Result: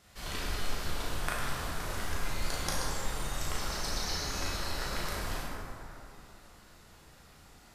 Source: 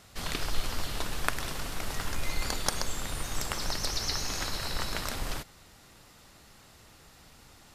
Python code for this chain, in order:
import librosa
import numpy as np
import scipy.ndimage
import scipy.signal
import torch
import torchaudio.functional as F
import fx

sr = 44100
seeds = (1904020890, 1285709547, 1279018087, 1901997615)

y = fx.doubler(x, sr, ms=37.0, db=-5)
y = fx.rev_plate(y, sr, seeds[0], rt60_s=3.0, hf_ratio=0.4, predelay_ms=0, drr_db=-5.0)
y = y * 10.0 ** (-8.5 / 20.0)